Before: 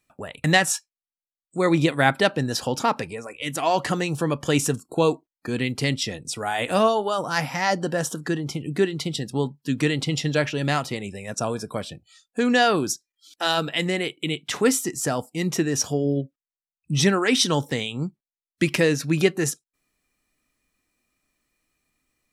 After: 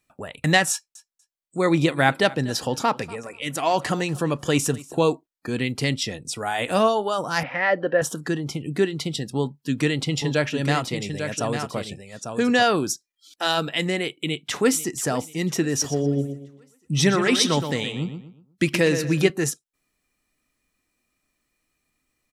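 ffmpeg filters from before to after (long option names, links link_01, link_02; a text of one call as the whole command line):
ffmpeg -i in.wav -filter_complex "[0:a]asettb=1/sr,asplit=3[link_01][link_02][link_03];[link_01]atrim=end=0.714[link_04];[link_02]atrim=start=0.71:end=5.08,asetpts=PTS-STARTPTS,afade=type=in:duration=0.004:curve=qsin,afade=type=out:start_time=4.366:duration=0.004:curve=qsin,aecho=1:1:241|482:0.0944|0.016,atrim=end_sample=192717[link_05];[link_03]atrim=start=5.076[link_06];[link_04][link_05]acrossfade=duration=0.004:curve1=hsin:curve2=qsin[link_07];[link_07][link_06]acrossfade=duration=0.004:curve1=qsin:curve2=hsin,asettb=1/sr,asplit=3[link_08][link_09][link_10];[link_08]atrim=end=7.434[link_11];[link_09]atrim=start=7.43:end=8.02,asetpts=PTS-STARTPTS,afade=type=in:duration=0.004:curve=qsin,afade=type=out:start_time=0.586:duration=0.004:curve=qsin,highpass=130,equalizer=frequency=150:width_type=q:width=4:gain=-7,equalizer=frequency=220:width_type=q:width=4:gain=-9,equalizer=frequency=530:width_type=q:width=4:gain=8,equalizer=frequency=880:width_type=q:width=4:gain=-7,equalizer=frequency=1800:width_type=q:width=4:gain=6,lowpass=frequency=2900:width=0.5412,lowpass=frequency=2900:width=1.3066[link_12];[link_10]atrim=start=8.016[link_13];[link_11][link_12]acrossfade=duration=0.004:curve1=hsin:curve2=qsin[link_14];[link_14][link_13]acrossfade=duration=0.004:curve1=qsin:curve2=hsin,asettb=1/sr,asplit=3[link_15][link_16][link_17];[link_15]atrim=end=9.374[link_18];[link_16]atrim=start=9.37:end=12.63,asetpts=PTS-STARTPTS,afade=type=in:duration=0.004:curve=qsin,afade=type=out:start_time=3.256:duration=0.004:curve=qsin,aecho=1:1:848:0.447,atrim=end_sample=143766[link_19];[link_17]atrim=start=12.626[link_20];[link_18][link_19]acrossfade=duration=0.004:curve1=hsin:curve2=qsin[link_21];[link_21][link_20]acrossfade=duration=0.004:curve1=qsin:curve2=hsin,asplit=2[link_22][link_23];[link_23]afade=type=in:start_time=14.22:duration=0.01,afade=type=out:start_time=14.9:duration=0.01,aecho=0:1:490|980|1470|1960:0.149624|0.0673306|0.0302988|0.0136344[link_24];[link_22][link_24]amix=inputs=2:normalize=0,asettb=1/sr,asplit=3[link_25][link_26][link_27];[link_25]atrim=end=15.704[link_28];[link_26]atrim=start=15.7:end=19.3,asetpts=PTS-STARTPTS,afade=type=in:duration=0.004:curve=qsin,afade=type=out:start_time=3.596:duration=0.004:curve=qsin,asplit=2[link_29][link_30];[link_30]adelay=121,lowpass=frequency=3800:poles=1,volume=-8dB,asplit=2[link_31][link_32];[link_32]adelay=121,lowpass=frequency=3800:poles=1,volume=0.35,asplit=2[link_33][link_34];[link_34]adelay=121,lowpass=frequency=3800:poles=1,volume=0.35,asplit=2[link_35][link_36];[link_36]adelay=121,lowpass=frequency=3800:poles=1,volume=0.35[link_37];[link_29][link_31][link_33][link_35][link_37]amix=inputs=5:normalize=0,atrim=end_sample=158760[link_38];[link_27]atrim=start=19.296[link_39];[link_28][link_38]acrossfade=duration=0.004:curve1=hsin:curve2=qsin[link_40];[link_40][link_39]acrossfade=duration=0.004:curve1=qsin:curve2=hsin" out.wav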